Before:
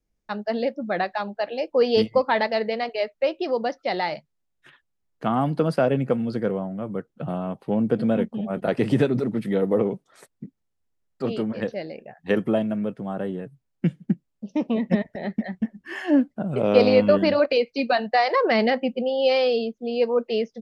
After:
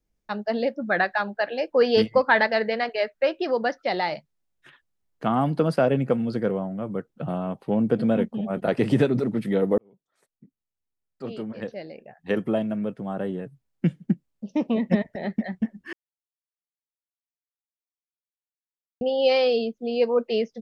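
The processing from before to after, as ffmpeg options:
-filter_complex "[0:a]asettb=1/sr,asplit=3[a][b][c];[a]atrim=end=0.724[d];[b]atrim=start=0.72:end=3.88,asetpts=PTS-STARTPTS,afade=t=in:d=0.004:c=qsin,afade=t=out:st=3.156:d=0.004:c=qsin,equalizer=f=1.6k:w=2.9:g=10[e];[c]atrim=start=3.876[f];[d][e]acrossfade=d=0.004:c1=hsin:c2=qsin[g];[g][f]acrossfade=d=0.004:c1=qsin:c2=hsin,asplit=4[h][i][j][k];[h]atrim=end=9.78,asetpts=PTS-STARTPTS,afade=t=out:st=9.776:d=0.004:c=hsin[l];[i]atrim=start=9.78:end=15.93,asetpts=PTS-STARTPTS,afade=t=in:d=3.57,afade=t=out:st=6.146:d=0.004:c=hsin[m];[j]atrim=start=15.93:end=19.01,asetpts=PTS-STARTPTS,volume=0[n];[k]atrim=start=19.01,asetpts=PTS-STARTPTS,afade=t=in:d=0.004:c=hsin[o];[l][m][n][o]concat=n=4:v=0:a=1"

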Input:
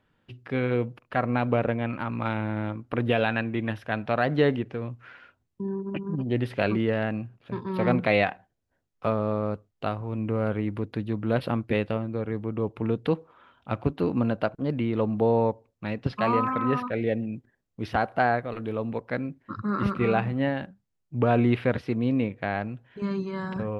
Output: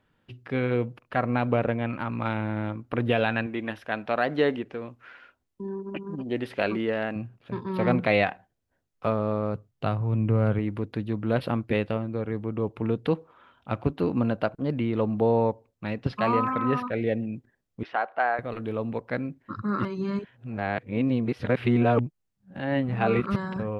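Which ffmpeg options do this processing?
-filter_complex "[0:a]asettb=1/sr,asplit=3[a][b][c];[a]atrim=end=3.464[d];[b]atrim=start=3.46:end=7.16,asetpts=PTS-STARTPTS,afade=t=in:d=0.004:c=qsin,afade=t=out:st=3.696:d=0.004:c=qsin,equalizer=f=120:t=o:w=1.2:g=-11.5[e];[c]atrim=start=7.156[f];[d][e]acrossfade=d=0.004:c1=hsin:c2=qsin[g];[g][f]acrossfade=d=0.004:c1=qsin:c2=hsin,asettb=1/sr,asplit=3[h][i][j];[h]atrim=end=9.544[k];[i]atrim=start=9.54:end=10.59,asetpts=PTS-STARTPTS,afade=t=in:d=0.004:c=qsin,afade=t=out:st=1.046:d=0.004:c=qsin,equalizer=f=130:t=o:w=0.77:g=11[l];[j]atrim=start=10.586[m];[k][l]acrossfade=d=0.004:c1=hsin:c2=qsin[n];[n][m]acrossfade=d=0.004:c1=qsin:c2=hsin,asettb=1/sr,asplit=3[o][p][q];[o]atrim=end=17.834[r];[p]atrim=start=17.83:end=18.39,asetpts=PTS-STARTPTS,afade=t=in:d=0.004:c=qsin,afade=t=out:st=0.556:d=0.004:c=qsin,highpass=610,lowpass=2.6k[s];[q]atrim=start=18.386[t];[r][s]acrossfade=d=0.004:c1=hsin:c2=qsin[u];[u][t]acrossfade=d=0.004:c1=qsin:c2=hsin,asplit=3[v][w][x];[v]atrim=end=19.852[y];[w]atrim=start=19.848:end=23.362,asetpts=PTS-STARTPTS,areverse[z];[x]atrim=start=23.358[aa];[y][z]acrossfade=d=0.004:c1=hsin:c2=hsin[ab];[ab][aa]acrossfade=d=0.004:c1=hsin:c2=hsin"

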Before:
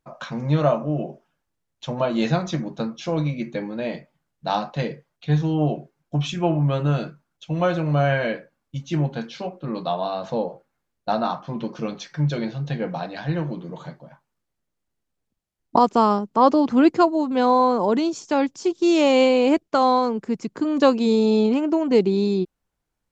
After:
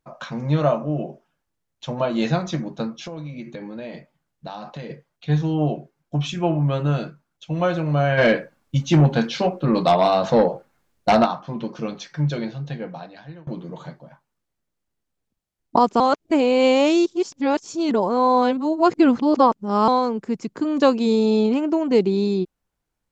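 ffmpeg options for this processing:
-filter_complex "[0:a]asettb=1/sr,asplit=3[a][b][c];[a]atrim=end=3.074[d];[b]atrim=start=3.07:end=4.9,asetpts=PTS-STARTPTS,afade=t=in:d=0.004:c=qsin,afade=t=out:st=1.826:d=0.004:c=qsin,acompressor=threshold=-30dB:ratio=6:attack=3.2:release=140:knee=1:detection=peak[e];[c]atrim=start=4.896[f];[d][e]acrossfade=d=0.004:c1=hsin:c2=qsin[g];[g][f]acrossfade=d=0.004:c1=qsin:c2=hsin,asplit=3[h][i][j];[h]afade=t=out:st=8.17:d=0.02[k];[i]aeval=exprs='0.355*sin(PI/2*2*val(0)/0.355)':c=same,afade=t=in:st=8.17:d=0.02,afade=t=out:st=11.24:d=0.02[l];[j]afade=t=in:st=11.24:d=0.02[m];[k][l][m]amix=inputs=3:normalize=0,asplit=4[n][o][p][q];[n]atrim=end=13.47,asetpts=PTS-STARTPTS,afade=t=out:st=12.31:d=1.16:silence=0.0668344[r];[o]atrim=start=13.47:end=16.002,asetpts=PTS-STARTPTS,afade=t=in:d=0.004:c=hsin:silence=0.0668344[s];[p]atrim=start=15.998:end=19.882,asetpts=PTS-STARTPTS,areverse[t];[q]atrim=start=19.878[u];[r][s]concat=n=2:v=0:a=1[v];[v][t]acrossfade=d=0.004:c1=hsin:c2=hsin[w];[w][u]acrossfade=d=0.004:c1=hsin:c2=hsin"

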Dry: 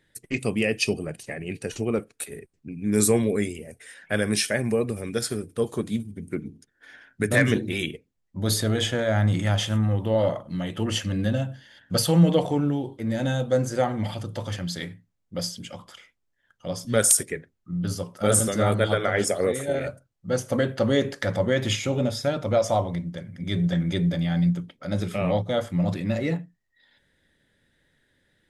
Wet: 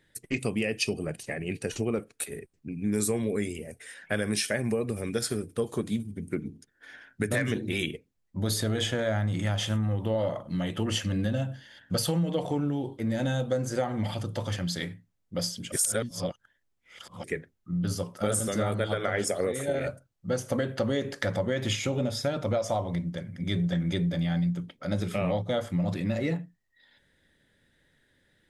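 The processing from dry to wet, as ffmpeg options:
-filter_complex "[0:a]asplit=3[a][b][c];[a]atrim=end=15.722[d];[b]atrim=start=15.718:end=17.242,asetpts=PTS-STARTPTS,areverse[e];[c]atrim=start=17.238[f];[d][e]acrossfade=d=0.004:c1=hsin:c2=hsin[g];[g][f]acrossfade=d=0.004:c1=hsin:c2=hsin,acompressor=threshold=-24dB:ratio=6"

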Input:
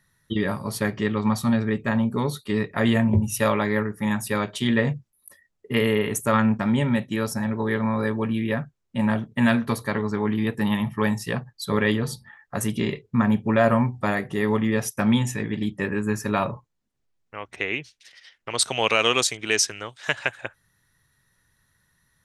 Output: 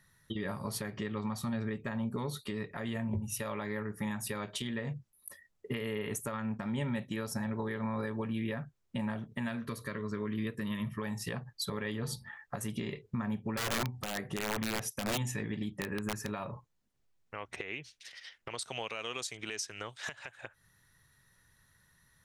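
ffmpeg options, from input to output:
-filter_complex "[0:a]asettb=1/sr,asplit=3[a][b][c];[a]atrim=end=9.614[d];[b]atrim=start=9.61:end=11.02,asetpts=PTS-STARTPTS,afade=t=in:d=0.004:c=qsin,afade=t=out:st=1.406:d=0.004:c=qsin,asuperstop=centerf=790:order=4:qfactor=2.3[e];[c]atrim=start=11.016[f];[d][e]acrossfade=d=0.004:c1=hsin:c2=qsin[g];[g][f]acrossfade=d=0.004:c1=qsin:c2=hsin,asettb=1/sr,asplit=3[h][i][j];[h]atrim=end=13.574[k];[i]atrim=start=13.57:end=16.3,asetpts=PTS-STARTPTS,afade=t=in:d=0.004:c=qsin,afade=t=out:st=2.726:d=0.004:c=qsin,aeval=exprs='(mod(5.31*val(0)+1,2)-1)/5.31':c=same[l];[j]atrim=start=16.296[m];[k][l]acrossfade=d=0.004:c1=hsin:c2=qsin[n];[n][m]acrossfade=d=0.004:c1=qsin:c2=hsin,equalizer=f=280:t=o:w=0.77:g=-2,acompressor=threshold=-30dB:ratio=6,alimiter=level_in=1.5dB:limit=-24dB:level=0:latency=1:release=201,volume=-1.5dB"

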